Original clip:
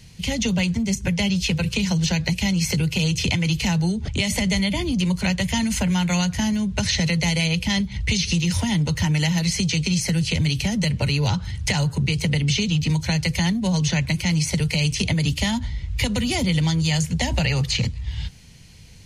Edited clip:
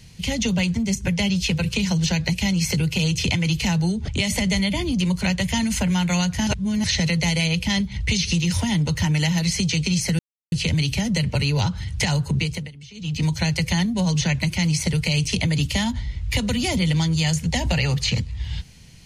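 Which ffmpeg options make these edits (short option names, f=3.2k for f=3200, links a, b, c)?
-filter_complex "[0:a]asplit=6[a][b][c][d][e][f];[a]atrim=end=6.472[g];[b]atrim=start=6.468:end=6.842,asetpts=PTS-STARTPTS,areverse[h];[c]atrim=start=6.838:end=10.19,asetpts=PTS-STARTPTS,afade=t=out:st=3.348:d=0.004:c=hsin,apad=pad_dur=0.33[i];[d]atrim=start=10.19:end=12.38,asetpts=PTS-STARTPTS,afade=t=in:d=0.004:c=hsin,afade=t=out:st=1.87:d=0.32:silence=0.0841395[j];[e]atrim=start=12.38:end=12.61,asetpts=PTS-STARTPTS,volume=-21.5dB[k];[f]atrim=start=12.61,asetpts=PTS-STARTPTS,afade=t=in:d=0.32:silence=0.0841395[l];[g][h]acrossfade=d=0.004:c1=hsin:c2=hsin[m];[i][j][k][l]concat=n=4:v=0:a=1[n];[m][n]acrossfade=d=0.004:c1=hsin:c2=hsin"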